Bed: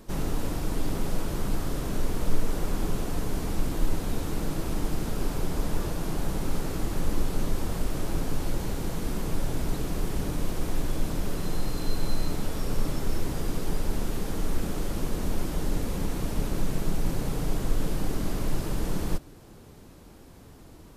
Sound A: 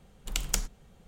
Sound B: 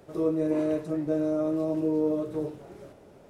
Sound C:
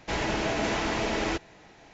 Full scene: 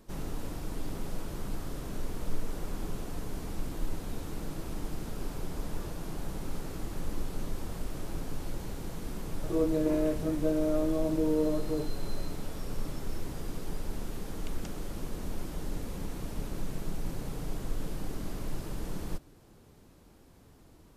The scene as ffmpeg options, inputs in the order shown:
ffmpeg -i bed.wav -i cue0.wav -i cue1.wav -filter_complex "[0:a]volume=-8dB[link_01];[1:a]lowpass=4500[link_02];[2:a]atrim=end=3.29,asetpts=PTS-STARTPTS,volume=-2dB,afade=type=in:duration=0.004:curve=hsin,afade=type=out:start_time=3.286:duration=0.004:curve=hsin,adelay=9350[link_03];[link_02]atrim=end=1.07,asetpts=PTS-STARTPTS,volume=-17dB,afade=type=in:duration=0.004:curve=hsin,afade=type=out:start_time=1.066:duration=0.004:curve=hsin,adelay=14110[link_04];[link_01][link_03][link_04]amix=inputs=3:normalize=0" out.wav

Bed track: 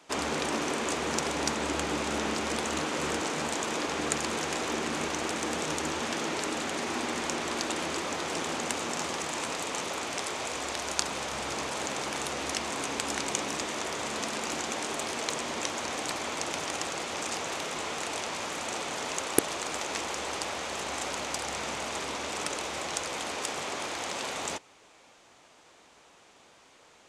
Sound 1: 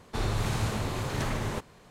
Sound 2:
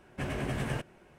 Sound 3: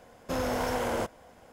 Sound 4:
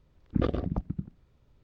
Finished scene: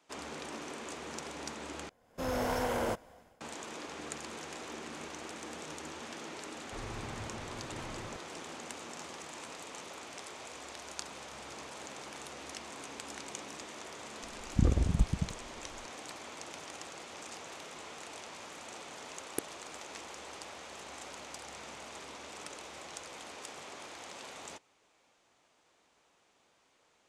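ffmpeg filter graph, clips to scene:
ffmpeg -i bed.wav -i cue0.wav -i cue1.wav -i cue2.wav -i cue3.wav -filter_complex "[0:a]volume=-12.5dB[link_01];[3:a]dynaudnorm=framelen=120:gausssize=5:maxgain=13dB[link_02];[1:a]bass=frequency=250:gain=-3,treble=frequency=4000:gain=-15[link_03];[4:a]aemphasis=mode=reproduction:type=riaa[link_04];[link_01]asplit=2[link_05][link_06];[link_05]atrim=end=1.894[link_07];[link_02]atrim=end=1.52,asetpts=PTS-STARTPTS,volume=-15.5dB[link_08];[link_06]atrim=start=3.406[link_09];[link_03]atrim=end=1.9,asetpts=PTS-STARTPTS,volume=-13dB,afade=type=in:duration=0.004:curve=hsin,afade=type=out:start_time=1.896:duration=0.004:curve=hsin,adelay=290178S[link_10];[link_04]atrim=end=1.63,asetpts=PTS-STARTPTS,volume=-10dB,afade=type=in:duration=0.004:curve=hsin,afade=type=out:start_time=1.626:duration=0.004:curve=hsin,adelay=14230[link_11];[link_07][link_08]acrossfade=duration=0.004:curve1=hsin:curve2=hsin[link_12];[link_12][link_09]acrossfade=duration=0.004:curve1=hsin:curve2=hsin[link_13];[link_13][link_10][link_11]amix=inputs=3:normalize=0" out.wav

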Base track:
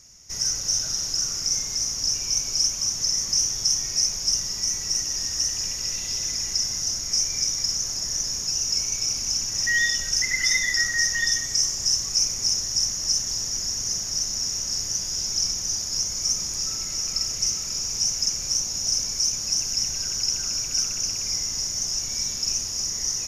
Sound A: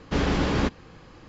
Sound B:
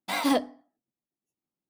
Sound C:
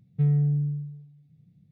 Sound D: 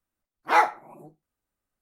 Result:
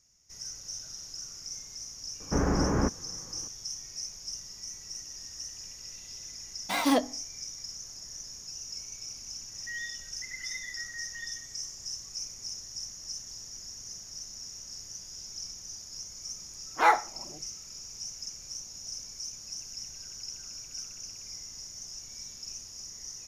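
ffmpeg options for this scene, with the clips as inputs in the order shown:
ffmpeg -i bed.wav -i cue0.wav -i cue1.wav -i cue2.wav -i cue3.wav -filter_complex "[0:a]volume=-16dB[link_01];[1:a]lowpass=frequency=1600:width=0.5412,lowpass=frequency=1600:width=1.3066,atrim=end=1.28,asetpts=PTS-STARTPTS,volume=-2.5dB,afade=type=in:duration=0.004:curve=hsin,afade=type=out:start_time=1.276:duration=0.004:curve=hsin,adelay=2200[link_02];[2:a]atrim=end=1.69,asetpts=PTS-STARTPTS,volume=-0.5dB,afade=type=in:duration=0.004:curve=hsin,afade=type=out:start_time=1.686:duration=0.004:curve=hsin,adelay=6610[link_03];[4:a]atrim=end=1.81,asetpts=PTS-STARTPTS,volume=-2.5dB,afade=type=in:duration=0.004:curve=hsin,afade=type=out:start_time=1.806:duration=0.004:curve=hsin,adelay=16300[link_04];[link_01][link_02][link_03][link_04]amix=inputs=4:normalize=0" out.wav

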